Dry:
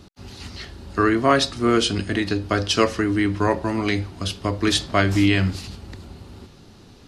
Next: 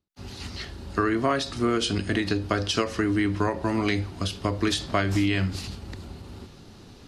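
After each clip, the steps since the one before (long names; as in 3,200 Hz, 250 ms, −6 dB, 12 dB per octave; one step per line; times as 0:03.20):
downward compressor 5 to 1, threshold −20 dBFS, peak gain reduction 8.5 dB
every ending faded ahead of time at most 150 dB per second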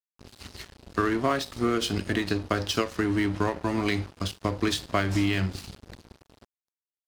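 dead-zone distortion −36.5 dBFS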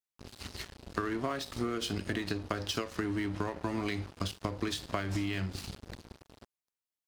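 downward compressor, threshold −30 dBFS, peak gain reduction 10.5 dB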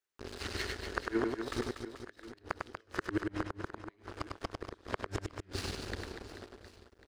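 gate with flip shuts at −24 dBFS, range −41 dB
graphic EQ with 15 bands 160 Hz −9 dB, 400 Hz +8 dB, 1,600 Hz +7 dB, 16,000 Hz −11 dB
reverse bouncing-ball delay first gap 100 ms, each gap 1.4×, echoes 5
level +2.5 dB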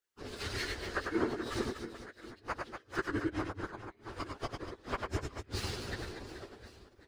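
random phases in long frames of 50 ms
level +1 dB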